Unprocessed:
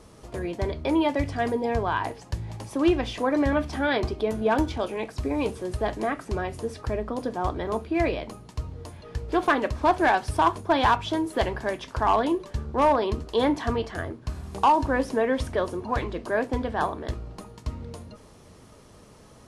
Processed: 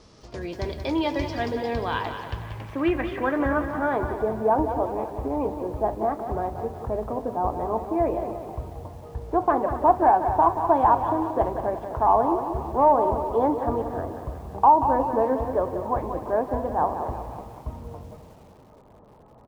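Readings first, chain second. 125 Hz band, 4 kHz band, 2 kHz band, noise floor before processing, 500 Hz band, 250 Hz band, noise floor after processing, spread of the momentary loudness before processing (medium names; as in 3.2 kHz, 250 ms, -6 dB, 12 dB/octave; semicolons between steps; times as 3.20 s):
-1.5 dB, no reading, -5.0 dB, -51 dBFS, +2.0 dB, -1.0 dB, -51 dBFS, 14 LU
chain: frequency-shifting echo 251 ms, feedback 44%, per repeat +42 Hz, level -15 dB; low-pass sweep 5.2 kHz -> 850 Hz, 1.41–4.30 s; bit-crushed delay 182 ms, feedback 55%, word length 8-bit, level -9 dB; trim -2.5 dB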